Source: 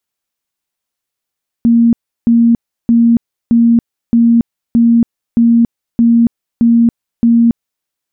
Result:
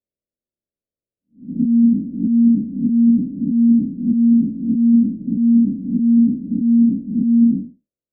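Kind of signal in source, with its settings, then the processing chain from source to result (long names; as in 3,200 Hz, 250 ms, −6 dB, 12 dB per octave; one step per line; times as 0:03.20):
tone bursts 233 Hz, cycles 65, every 0.62 s, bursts 10, −5 dBFS
spectrum smeared in time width 224 ms
Butterworth low-pass 630 Hz 72 dB per octave
on a send: backwards echo 101 ms −10 dB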